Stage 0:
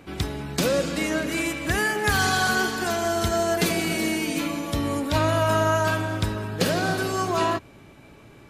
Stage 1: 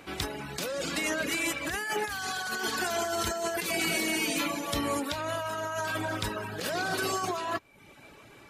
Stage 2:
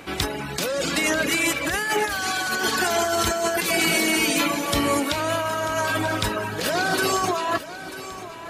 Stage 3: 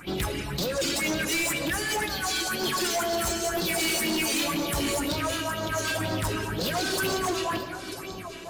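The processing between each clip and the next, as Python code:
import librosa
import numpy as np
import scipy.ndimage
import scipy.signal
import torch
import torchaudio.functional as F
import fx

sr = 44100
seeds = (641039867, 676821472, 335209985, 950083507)

y1 = fx.dereverb_blind(x, sr, rt60_s=0.6)
y1 = fx.low_shelf(y1, sr, hz=370.0, db=-11.5)
y1 = fx.over_compress(y1, sr, threshold_db=-31.0, ratio=-1.0)
y2 = fx.echo_feedback(y1, sr, ms=940, feedback_pct=47, wet_db=-14)
y2 = F.gain(torch.from_numpy(y2), 8.0).numpy()
y3 = fx.phaser_stages(y2, sr, stages=4, low_hz=110.0, high_hz=2100.0, hz=2.0, feedback_pct=45)
y3 = fx.room_shoebox(y3, sr, seeds[0], volume_m3=3700.0, walls='mixed', distance_m=0.92)
y3 = np.clip(y3, -10.0 ** (-24.0 / 20.0), 10.0 ** (-24.0 / 20.0))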